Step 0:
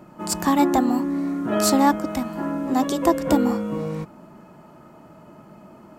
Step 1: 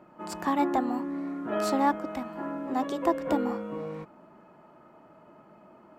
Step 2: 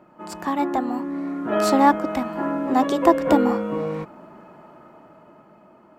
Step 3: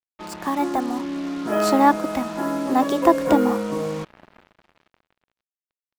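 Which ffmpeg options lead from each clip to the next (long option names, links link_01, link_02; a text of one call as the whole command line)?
ffmpeg -i in.wav -af "bass=frequency=250:gain=-9,treble=frequency=4000:gain=-13,volume=-5.5dB" out.wav
ffmpeg -i in.wav -af "dynaudnorm=framelen=220:gausssize=13:maxgain=9dB,volume=2dB" out.wav
ffmpeg -i in.wav -af "acrusher=bits=5:mix=0:aa=0.5" out.wav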